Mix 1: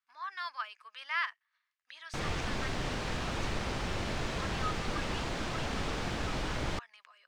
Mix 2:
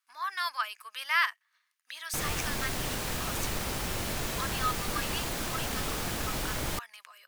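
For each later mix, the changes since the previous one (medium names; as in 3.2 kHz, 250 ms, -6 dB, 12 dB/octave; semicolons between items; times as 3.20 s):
speech +5.5 dB; master: remove distance through air 120 m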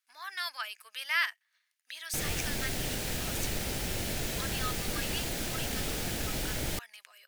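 master: add peaking EQ 1.1 kHz -11.5 dB 0.61 oct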